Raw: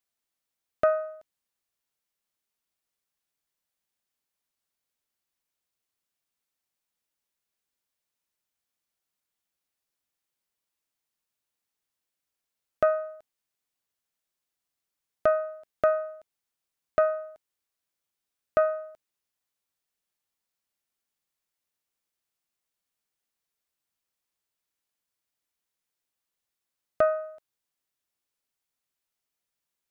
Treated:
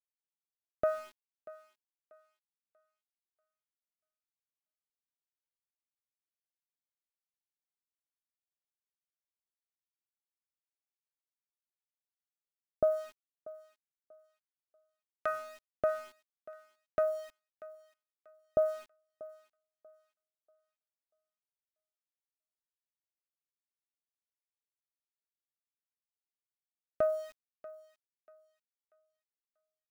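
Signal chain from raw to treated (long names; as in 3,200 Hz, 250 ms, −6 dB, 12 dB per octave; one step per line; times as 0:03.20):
two-band tremolo in antiphase 1.4 Hz, depth 100%, crossover 870 Hz
centre clipping without the shift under −46.5 dBFS
feedback echo with a high-pass in the loop 638 ms, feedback 31%, high-pass 500 Hz, level −17 dB
level −2.5 dB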